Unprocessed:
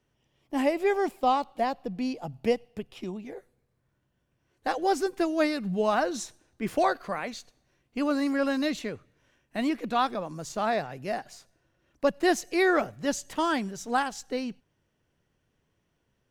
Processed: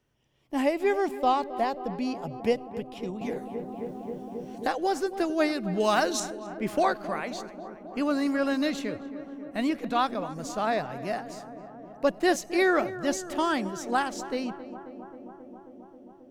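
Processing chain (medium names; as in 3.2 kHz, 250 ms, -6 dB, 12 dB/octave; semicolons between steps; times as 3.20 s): 5.80–6.20 s: treble shelf 2.4 kHz +11 dB; filtered feedback delay 268 ms, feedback 84%, low-pass 1.7 kHz, level -14 dB; 3.21–5.30 s: three bands compressed up and down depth 70%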